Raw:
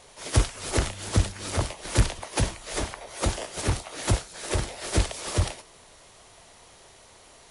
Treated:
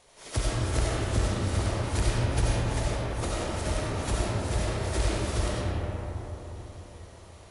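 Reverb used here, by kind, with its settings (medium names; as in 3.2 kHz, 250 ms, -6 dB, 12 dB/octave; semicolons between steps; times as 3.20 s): algorithmic reverb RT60 4.3 s, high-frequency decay 0.3×, pre-delay 45 ms, DRR -7 dB; trim -8.5 dB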